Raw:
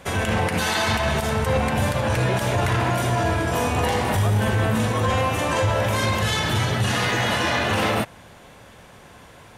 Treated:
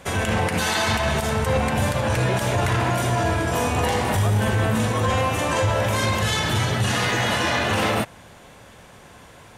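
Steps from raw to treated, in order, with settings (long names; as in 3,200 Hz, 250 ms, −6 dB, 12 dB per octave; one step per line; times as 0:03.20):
parametric band 7,500 Hz +2.5 dB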